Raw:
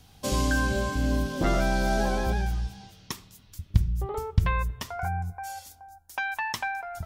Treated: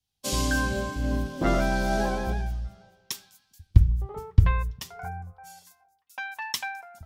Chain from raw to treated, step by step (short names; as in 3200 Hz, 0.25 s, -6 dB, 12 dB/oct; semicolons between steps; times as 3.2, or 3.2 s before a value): delay with a stepping band-pass 0.402 s, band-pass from 210 Hz, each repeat 1.4 oct, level -11.5 dB; three-band expander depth 100%; gain -1.5 dB